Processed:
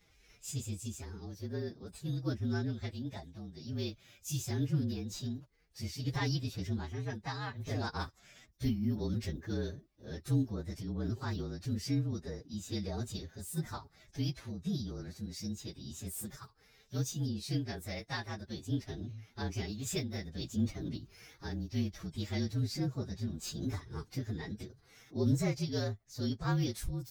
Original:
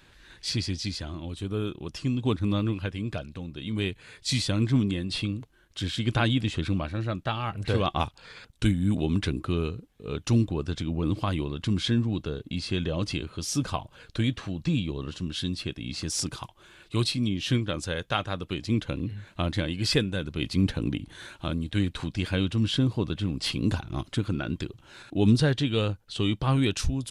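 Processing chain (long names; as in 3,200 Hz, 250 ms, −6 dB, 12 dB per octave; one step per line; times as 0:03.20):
partials spread apart or drawn together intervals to 115%
phase-vocoder pitch shift with formants kept +3.5 semitones
level −7 dB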